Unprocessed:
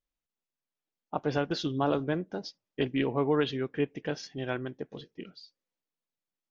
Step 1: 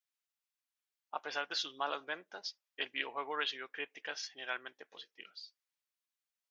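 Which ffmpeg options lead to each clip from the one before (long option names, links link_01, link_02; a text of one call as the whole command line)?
ffmpeg -i in.wav -af "highpass=1200,volume=1dB" out.wav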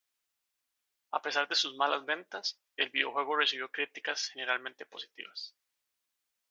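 ffmpeg -i in.wav -af "equalizer=frequency=160:width_type=o:width=0.27:gain=-9,volume=7.5dB" out.wav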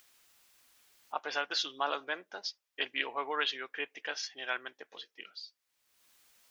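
ffmpeg -i in.wav -af "acompressor=mode=upward:threshold=-43dB:ratio=2.5,volume=-3.5dB" out.wav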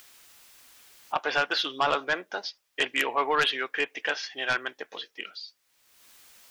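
ffmpeg -i in.wav -filter_complex "[0:a]acrossover=split=3700[link_01][link_02];[link_02]acompressor=threshold=-55dB:ratio=4:attack=1:release=60[link_03];[link_01][link_03]amix=inputs=2:normalize=0,aeval=exprs='0.188*(cos(1*acos(clip(val(0)/0.188,-1,1)))-cos(1*PI/2))+0.0944*(cos(5*acos(clip(val(0)/0.188,-1,1)))-cos(5*PI/2))':channel_layout=same" out.wav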